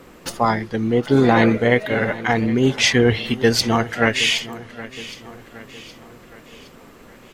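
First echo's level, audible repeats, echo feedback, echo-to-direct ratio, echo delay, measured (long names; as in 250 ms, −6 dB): −17.0 dB, 3, 50%, −16.0 dB, 767 ms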